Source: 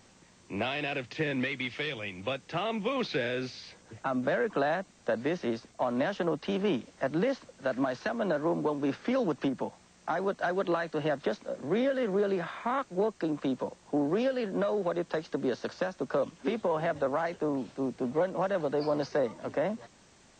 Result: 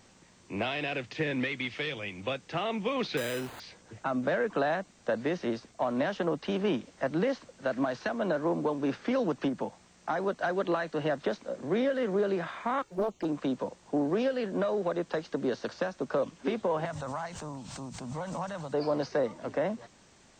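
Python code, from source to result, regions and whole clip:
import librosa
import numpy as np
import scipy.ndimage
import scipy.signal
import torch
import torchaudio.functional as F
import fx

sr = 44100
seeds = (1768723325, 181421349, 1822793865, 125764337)

y = fx.chain(x, sr, fx.resample_bad(factor=8, down='none', up='hold'),
    fx.transformer_sat(knee_hz=630.0), at=(3.17, 3.6))
y = fx.chain(y, sr, fx.quant_companded(bits=8),
    fx.env_flanger(rest_ms=2.6, full_db=-29.0),
    fx.doppler_dist(depth_ms=0.56), at=(12.82, 13.25))
y = fx.chain(y, sr, fx.curve_eq(hz=(150.0, 390.0, 930.0, 1700.0, 2600.0, 7900.0), db=(0, -18, -2, -7, -5, 5)),
    fx.pre_swell(db_per_s=38.0), at=(16.85, 18.74))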